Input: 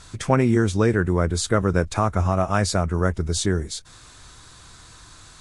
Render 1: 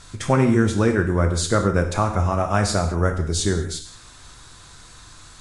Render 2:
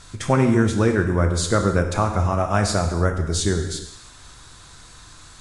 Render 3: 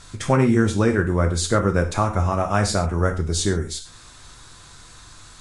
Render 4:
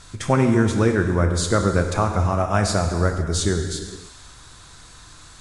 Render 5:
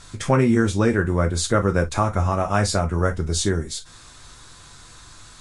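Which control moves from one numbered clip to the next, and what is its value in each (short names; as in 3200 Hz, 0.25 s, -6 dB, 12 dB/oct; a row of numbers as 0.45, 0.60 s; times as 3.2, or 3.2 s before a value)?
non-linear reverb, gate: 240, 350, 150, 530, 80 ms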